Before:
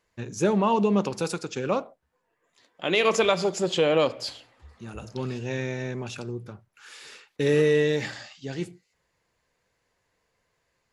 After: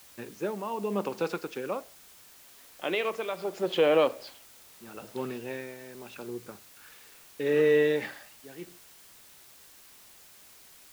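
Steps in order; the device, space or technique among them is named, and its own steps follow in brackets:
shortwave radio (band-pass filter 260–2,900 Hz; amplitude tremolo 0.77 Hz, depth 74%; white noise bed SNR 22 dB)

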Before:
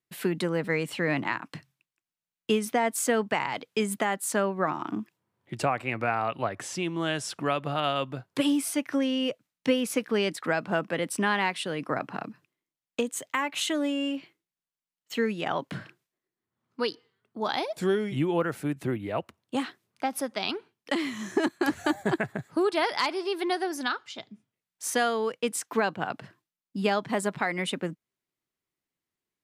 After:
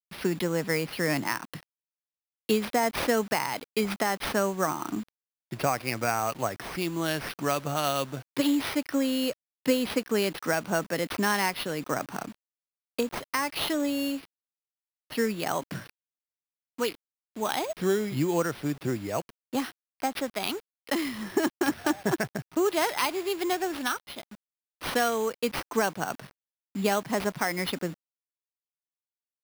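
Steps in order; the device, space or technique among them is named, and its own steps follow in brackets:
early 8-bit sampler (sample-rate reduction 7,200 Hz, jitter 0%; bit reduction 8 bits)

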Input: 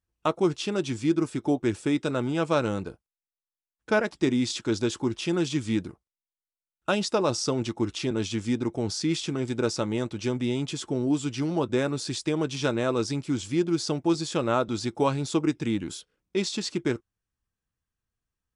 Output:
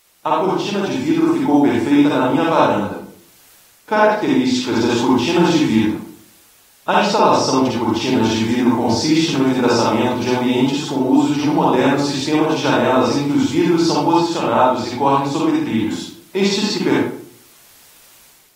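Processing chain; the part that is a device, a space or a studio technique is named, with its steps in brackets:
filmed off a television (band-pass filter 170–6,100 Hz; parametric band 890 Hz +12 dB 0.47 octaves; convolution reverb RT60 0.50 s, pre-delay 45 ms, DRR −5.5 dB; white noise bed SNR 34 dB; automatic gain control gain up to 9 dB; level −1 dB; AAC 48 kbit/s 48,000 Hz)

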